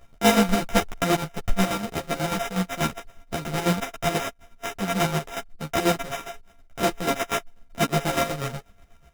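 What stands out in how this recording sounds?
a buzz of ramps at a fixed pitch in blocks of 64 samples; chopped level 8.2 Hz, depth 60%, duty 45%; aliases and images of a low sample rate 4400 Hz, jitter 0%; a shimmering, thickened sound

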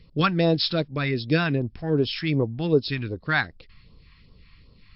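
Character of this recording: phasing stages 2, 2.6 Hz, lowest notch 450–1900 Hz; MP3

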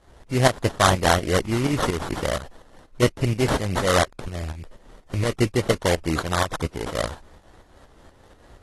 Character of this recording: aliases and images of a low sample rate 2500 Hz, jitter 20%; tremolo saw up 4.2 Hz, depth 65%; AAC

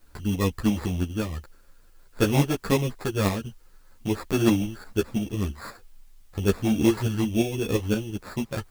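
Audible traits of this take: aliases and images of a low sample rate 3000 Hz, jitter 0%; tremolo saw up 5.8 Hz, depth 45%; a quantiser's noise floor 12-bit, dither triangular; a shimmering, thickened sound

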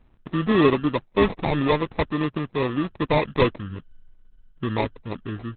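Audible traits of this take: aliases and images of a low sample rate 1500 Hz, jitter 0%; Opus

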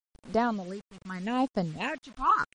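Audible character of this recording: phasing stages 6, 0.79 Hz, lowest notch 520–2500 Hz; tremolo triangle 0.84 Hz, depth 90%; a quantiser's noise floor 10-bit, dither none; MP3

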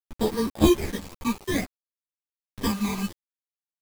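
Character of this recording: aliases and images of a low sample rate 1400 Hz, jitter 0%; phasing stages 12, 0.61 Hz, lowest notch 550–2500 Hz; a quantiser's noise floor 6-bit, dither none; a shimmering, thickened sound

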